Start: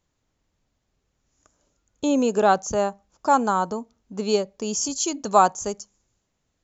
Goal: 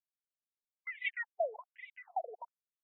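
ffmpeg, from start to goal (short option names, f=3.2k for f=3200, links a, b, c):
-filter_complex "[0:a]aeval=exprs='sgn(val(0))*max(abs(val(0))-0.0158,0)':c=same,asplit=3[a][b][c];[a]bandpass=f=300:t=q:w=8,volume=0dB[d];[b]bandpass=f=870:t=q:w=8,volume=-6dB[e];[c]bandpass=f=2.24k:t=q:w=8,volume=-9dB[f];[d][e][f]amix=inputs=3:normalize=0,asetrate=103194,aresample=44100,acrusher=bits=9:mix=0:aa=0.000001,asubboost=boost=11:cutoff=190,afftfilt=real='re*between(b*sr/1024,500*pow(2800/500,0.5+0.5*sin(2*PI*1.2*pts/sr))/1.41,500*pow(2800/500,0.5+0.5*sin(2*PI*1.2*pts/sr))*1.41)':imag='im*between(b*sr/1024,500*pow(2800/500,0.5+0.5*sin(2*PI*1.2*pts/sr))/1.41,500*pow(2800/500,0.5+0.5*sin(2*PI*1.2*pts/sr))*1.41)':win_size=1024:overlap=0.75,volume=6dB"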